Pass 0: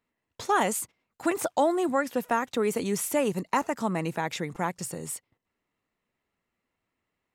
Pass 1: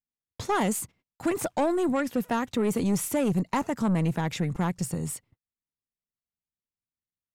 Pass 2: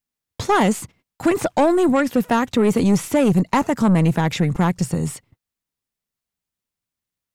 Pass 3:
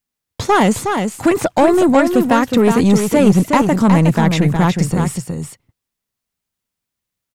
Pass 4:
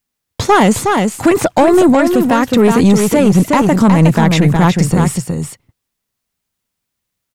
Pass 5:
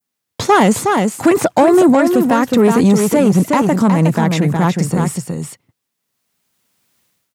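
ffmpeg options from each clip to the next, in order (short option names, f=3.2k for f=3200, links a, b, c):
-af "bass=f=250:g=13,treble=f=4k:g=0,aeval=exprs='(tanh(8.91*val(0)+0.2)-tanh(0.2))/8.91':c=same,agate=range=-27dB:threshold=-55dB:ratio=16:detection=peak"
-filter_complex "[0:a]acrossover=split=5900[a][b];[b]acompressor=threshold=-44dB:ratio=4:attack=1:release=60[c];[a][c]amix=inputs=2:normalize=0,volume=9dB"
-af "aecho=1:1:365:0.501,volume=4dB"
-af "alimiter=level_in=6dB:limit=-1dB:release=50:level=0:latency=1,volume=-1dB"
-af "highpass=130,adynamicequalizer=threshold=0.0251:dfrequency=3100:dqfactor=0.89:tfrequency=3100:tqfactor=0.89:attack=5:release=100:ratio=0.375:range=2:mode=cutabove:tftype=bell,dynaudnorm=f=540:g=3:m=16.5dB,volume=-1dB"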